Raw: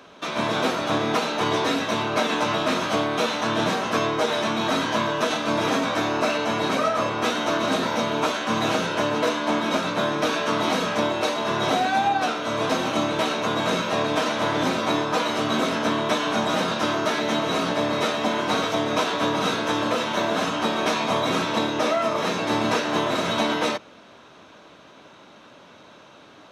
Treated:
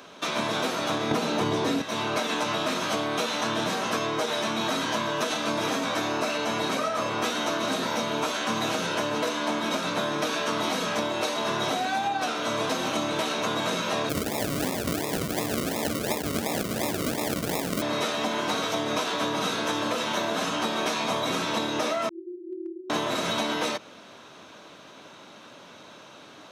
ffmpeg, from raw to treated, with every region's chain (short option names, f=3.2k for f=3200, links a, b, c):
-filter_complex "[0:a]asettb=1/sr,asplit=3[a][b][c];[a]atrim=end=1.114[d];[b]atrim=start=1.11:end=1.82,asetpts=PTS-STARTPTS,afade=t=in:d=0.004:c=qsin,afade=t=out:st=0.706:d=0.004:c=qsin,lowshelf=f=460:g=11.5,acontrast=33[e];[c]atrim=start=1.816[f];[d][e]acrossfade=d=0.004:c1=hsin:c2=qsin[g];[g][f]acrossfade=d=0.004:c1=qsin:c2=hsin,asettb=1/sr,asplit=3[h][i][j];[h]atrim=end=14.094[k];[i]atrim=start=14.09:end=17.82,asetpts=PTS-STARTPTS,afade=t=in:d=0.004:c=qsin,afade=t=out:st=3.726:d=0.004:c=qsin,asuperstop=centerf=1500:order=8:qfactor=1.6,acrusher=samples=41:mix=1:aa=0.000001:lfo=1:lforange=24.6:lforate=2.8[l];[j]atrim=start=17.816[m];[k][l]acrossfade=d=0.004:c1=hsin:c2=qsin[n];[n][m]acrossfade=d=0.004:c1=qsin:c2=hsin,asettb=1/sr,asplit=3[o][p][q];[o]atrim=end=22.094[r];[p]atrim=start=22.09:end=22.9,asetpts=PTS-STARTPTS,afade=t=in:d=0.004:c=qsin,afade=t=out:st=0.806:d=0.004:c=qsin,asuperpass=centerf=350:order=8:qfactor=7.3,aeval=exprs='clip(val(0),-1,0.0398)':c=same[s];[q]atrim=start=22.896[t];[r][s]acrossfade=d=0.004:c1=hsin:c2=qsin[u];[u][t]acrossfade=d=0.004:c1=qsin:c2=hsin,highpass=86,highshelf=f=5k:g=8.5,acompressor=threshold=-24dB:ratio=6"